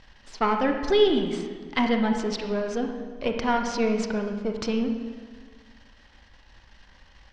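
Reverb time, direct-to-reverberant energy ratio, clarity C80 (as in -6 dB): 1.5 s, 4.0 dB, 7.0 dB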